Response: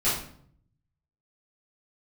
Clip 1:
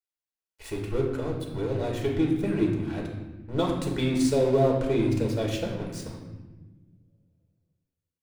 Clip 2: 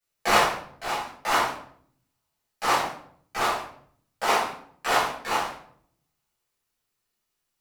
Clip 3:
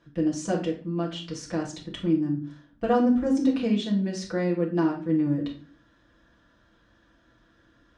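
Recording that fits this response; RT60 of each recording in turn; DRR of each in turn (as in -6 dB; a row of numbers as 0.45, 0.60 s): 2; 1.3, 0.60, 0.45 s; -1.5, -11.5, -4.0 dB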